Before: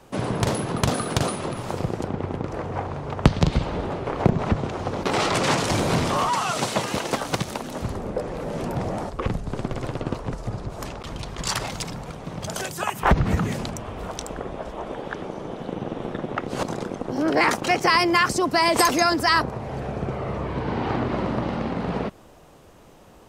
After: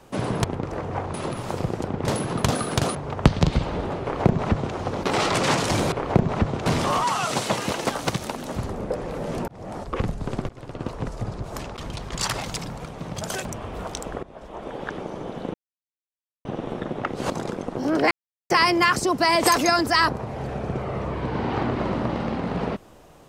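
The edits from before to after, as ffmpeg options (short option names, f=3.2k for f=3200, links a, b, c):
-filter_complex "[0:a]asplit=14[a][b][c][d][e][f][g][h][i][j][k][l][m][n];[a]atrim=end=0.442[o];[b]atrim=start=2.248:end=2.952[p];[c]atrim=start=1.338:end=2.252[q];[d]atrim=start=0.438:end=1.342[r];[e]atrim=start=2.948:end=5.922[s];[f]atrim=start=4.018:end=4.762[t];[g]atrim=start=5.918:end=8.74,asetpts=PTS-STARTPTS,afade=t=out:st=2.818:d=0.004:c=hsin[u];[h]atrim=start=8.74:end=9.75,asetpts=PTS-STARTPTS,afade=t=in:d=0.44,afade=t=out:st=1.006:d=0.004:c=hsin:silence=0.0749894[v];[i]atrim=start=9.75:end=12.712,asetpts=PTS-STARTPTS,afade=t=in:d=0.52:silence=0.0749894[w];[j]atrim=start=13.688:end=14.47,asetpts=PTS-STARTPTS,afade=t=out:st=0.778:d=0.004:c=hsin:silence=0.149624[x];[k]atrim=start=14.47:end=15.78,asetpts=PTS-STARTPTS,afade=t=in:d=0.59:silence=0.149624,afade=t=out:st=1.306:d=0.004:c=hsin,apad=pad_dur=0.91[y];[l]atrim=start=15.78:end=17.44,asetpts=PTS-STARTPTS,afade=t=in:d=0.004:c=hsin,afade=t=out:st=1.656:d=0.004:c=hsin[z];[m]atrim=start=17.44:end=17.83,asetpts=PTS-STARTPTS,volume=0[aa];[n]atrim=start=17.83,asetpts=PTS-STARTPTS,afade=t=in:d=0.004:c=hsin[ab];[o][p]acrossfade=d=0.004:c1=hsin:c2=hsin[ac];[ac][q]acrossfade=d=0.004:c1=hsin:c2=hsin[ad];[ad][r]acrossfade=d=0.004:c1=hsin:c2=hsin[ae];[ae][s]acrossfade=d=0.004:c1=hsin:c2=hsin[af];[af][t]acrossfade=d=0.004:c1=hsin:c2=hsin[ag];[u][v][w]concat=n=3:v=0:a=1[ah];[ag][ah]acrossfade=d=0.004:c1=hsin:c2=hsin[ai];[x][y][z][aa][ab]concat=n=5:v=0:a=1[aj];[ai][aj]acrossfade=d=0.004:c1=hsin:c2=hsin"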